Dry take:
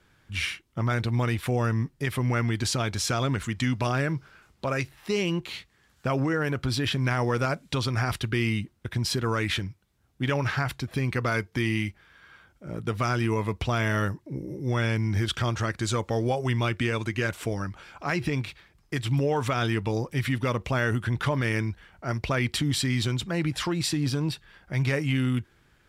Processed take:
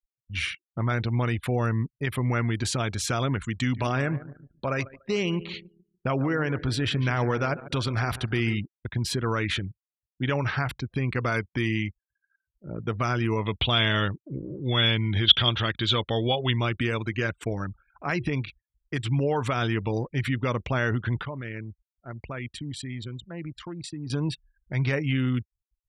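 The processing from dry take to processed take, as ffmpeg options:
-filter_complex "[0:a]asettb=1/sr,asplit=3[a][b][c];[a]atrim=end=3.564[d];[b]atrim=start=3.56:end=8.59,asetpts=PTS-STARTPTS,afade=t=in:d=0.004:c=qsin,afade=t=out:st=5.026:d=0.004:c=qsin,aecho=1:1:145|290|435|580|725|870:0.178|0.103|0.0598|0.0347|0.0201|0.0117,atrim=end_sample=221823[e];[c]atrim=start=8.586[f];[d][e]acrossfade=d=0.004:c1=hsin:c2=qsin[g];[g][f]acrossfade=d=0.004:c1=qsin:c2=hsin,asplit=3[h][i][j];[h]afade=t=out:st=13.45:d=0.02[k];[i]lowpass=f=3.4k:t=q:w=8.3,afade=t=in:st=13.45:d=0.02,afade=t=out:st=16.5:d=0.02[l];[j]afade=t=in:st=16.5:d=0.02[m];[k][l][m]amix=inputs=3:normalize=0,asplit=3[n][o][p];[n]atrim=end=21.232[q];[o]atrim=start=21.228:end=24.102,asetpts=PTS-STARTPTS,volume=-9dB[r];[p]atrim=start=24.098[s];[q][r]acrossfade=d=0.004:c1=hsin:c2=hsin[t];[t][s]acrossfade=d=0.004:c1=hsin:c2=hsin,afftfilt=real='re*gte(hypot(re,im),0.00794)':imag='im*gte(hypot(re,im),0.00794)':win_size=1024:overlap=0.75,anlmdn=1,equalizer=f=5.2k:w=5.3:g=-5.5"

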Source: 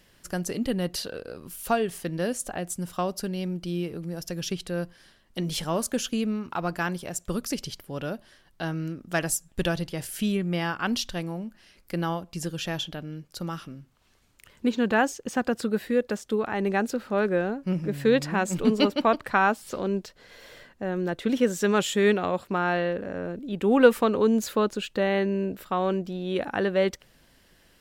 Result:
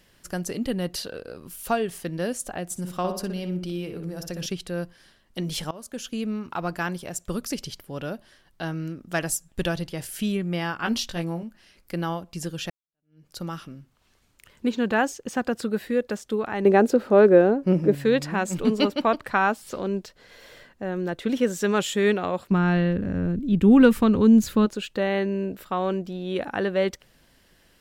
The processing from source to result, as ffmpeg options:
-filter_complex "[0:a]asettb=1/sr,asplit=3[a][b][c];[a]atrim=end=2.654[d];[b]atrim=start=2.65:end=4.46,asetpts=PTS-STARTPTS,afade=t=in:d=0.004:c=qsin,afade=t=out:st=1.806:d=0.004:c=qsin,asplit=2[e][f];[f]adelay=61,lowpass=f=2.5k:p=1,volume=-6dB,asplit=2[g][h];[h]adelay=61,lowpass=f=2.5k:p=1,volume=0.43,asplit=2[i][j];[j]adelay=61,lowpass=f=2.5k:p=1,volume=0.43,asplit=2[k][l];[l]adelay=61,lowpass=f=2.5k:p=1,volume=0.43,asplit=2[m][n];[n]adelay=61,lowpass=f=2.5k:p=1,volume=0.43[o];[e][g][i][k][m][o]amix=inputs=6:normalize=0,atrim=end_sample=79821[p];[c]atrim=start=4.456[q];[d][p]acrossfade=d=0.004:c1=hsin:c2=qsin[r];[r][q]acrossfade=d=0.004:c1=qsin:c2=hsin,asettb=1/sr,asplit=3[s][t][u];[s]atrim=end=10.814[v];[t]atrim=start=10.81:end=11.43,asetpts=PTS-STARTPTS,afade=t=in:d=0.004:c=qsin,afade=t=out:st=0.616:d=0.004:c=qsin,asplit=2[w][x];[x]adelay=18,volume=-5dB[y];[w][y]amix=inputs=2:normalize=0,atrim=end_sample=27342[z];[u]atrim=start=11.426[aa];[v][z]acrossfade=d=0.004:c1=hsin:c2=qsin[ab];[ab][aa]acrossfade=d=0.004:c1=qsin:c2=hsin,asettb=1/sr,asplit=3[ac][ad][ae];[ac]atrim=end=16.654[af];[ad]atrim=start=16.65:end=17.95,asetpts=PTS-STARTPTS,afade=t=in:d=0.004:c=qsin,afade=t=out:st=1.296:d=0.004:c=qsin,equalizer=f=420:t=o:w=2.2:g=11.5[ag];[ae]atrim=start=17.946[ah];[af][ag]acrossfade=d=0.004:c1=hsin:c2=qsin[ai];[ai][ah]acrossfade=d=0.004:c1=qsin:c2=hsin,asplit=3[aj][ak][al];[aj]afade=t=out:st=22.5:d=0.02[am];[ak]asubboost=boost=8:cutoff=200,afade=t=in:st=22.5:d=0.02,afade=t=out:st=24.65:d=0.02[an];[al]afade=t=in:st=24.65:d=0.02[ao];[am][an][ao]amix=inputs=3:normalize=0,asplit=3[ap][aq][ar];[ap]atrim=end=5.71,asetpts=PTS-STARTPTS,afade=t=out:st=5.706:d=0.004:c=hsin:silence=0.0891251[as];[aq]atrim=start=5.71:end=12.7,asetpts=PTS-STARTPTS,afade=t=in:d=0.66:silence=0.0891251,afade=t=out:st=6.986:d=0.004:c=hsin[at];[ar]atrim=start=12.7,asetpts=PTS-STARTPTS,afade=t=in:d=0.57:c=exp[au];[as][at][au]concat=n=3:v=0:a=1"

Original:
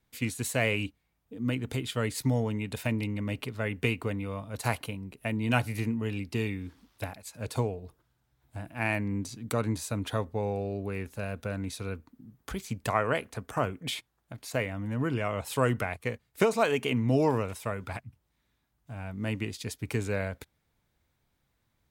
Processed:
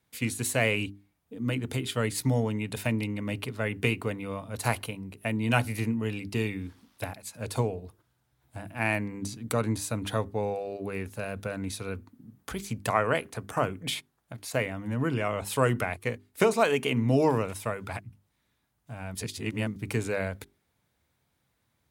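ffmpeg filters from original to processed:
-filter_complex "[0:a]asplit=3[a][b][c];[a]atrim=end=19.152[d];[b]atrim=start=19.148:end=19.762,asetpts=PTS-STARTPTS,areverse[e];[c]atrim=start=19.758[f];[d][e]acrossfade=d=0.004:c1=hsin:c2=hsin[g];[g][f]acrossfade=d=0.004:c1=hsin:c2=hsin,highpass=67,equalizer=f=10k:w=3.1:g=4,bandreject=f=50:t=h:w=6,bandreject=f=100:t=h:w=6,bandreject=f=150:t=h:w=6,bandreject=f=200:t=h:w=6,bandreject=f=250:t=h:w=6,bandreject=f=300:t=h:w=6,bandreject=f=350:t=h:w=6,bandreject=f=400:t=h:w=6,volume=2dB"

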